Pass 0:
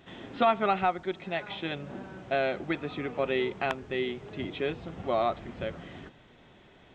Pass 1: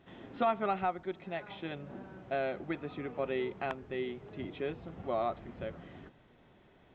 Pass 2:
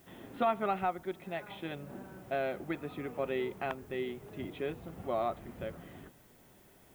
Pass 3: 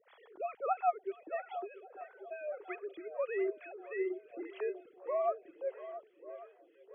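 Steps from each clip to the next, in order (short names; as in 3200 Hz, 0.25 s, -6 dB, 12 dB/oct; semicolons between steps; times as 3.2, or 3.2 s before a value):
high shelf 3100 Hz -11 dB; gain -5 dB
added noise blue -66 dBFS
sine-wave speech; swung echo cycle 1.137 s, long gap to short 1.5:1, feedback 41%, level -14 dB; photocell phaser 1.6 Hz; gain +1.5 dB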